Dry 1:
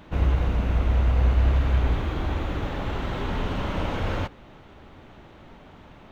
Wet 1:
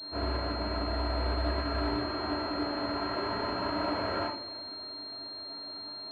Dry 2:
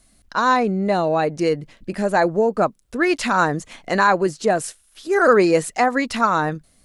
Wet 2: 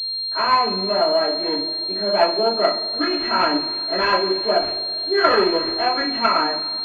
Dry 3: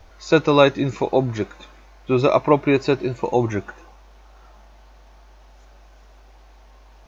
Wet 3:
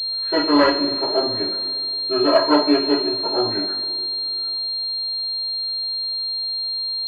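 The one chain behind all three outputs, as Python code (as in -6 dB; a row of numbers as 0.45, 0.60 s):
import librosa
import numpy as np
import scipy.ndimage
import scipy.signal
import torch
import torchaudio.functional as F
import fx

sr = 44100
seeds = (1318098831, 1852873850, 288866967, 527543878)

y = fx.self_delay(x, sr, depth_ms=0.24)
y = scipy.signal.sosfilt(scipy.signal.bessel(2, 310.0, 'highpass', norm='mag', fs=sr, output='sos'), y)
y = y + 0.61 * np.pad(y, (int(3.1 * sr / 1000.0), 0))[:len(y)]
y = fx.rev_double_slope(y, sr, seeds[0], early_s=0.37, late_s=2.5, knee_db=-20, drr_db=-10.0)
y = fx.pwm(y, sr, carrier_hz=4200.0)
y = y * librosa.db_to_amplitude(-10.0)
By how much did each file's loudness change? -7.5, +0.5, 0.0 LU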